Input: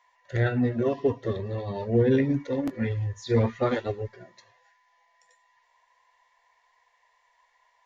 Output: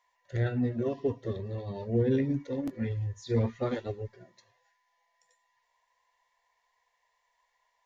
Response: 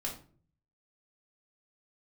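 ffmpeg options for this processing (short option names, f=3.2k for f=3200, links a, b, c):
-af "equalizer=f=1.4k:t=o:w=2.8:g=-6,volume=-3.5dB"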